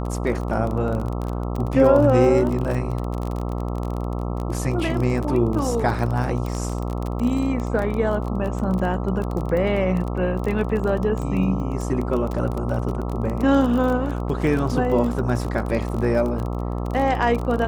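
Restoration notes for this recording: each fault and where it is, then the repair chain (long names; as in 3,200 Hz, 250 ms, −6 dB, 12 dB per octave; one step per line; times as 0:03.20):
mains buzz 60 Hz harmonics 22 −26 dBFS
surface crackle 26 per second −25 dBFS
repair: click removal
hum removal 60 Hz, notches 22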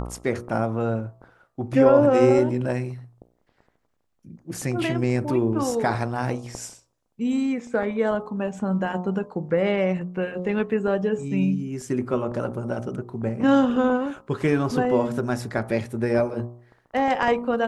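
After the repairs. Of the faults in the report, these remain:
none of them is left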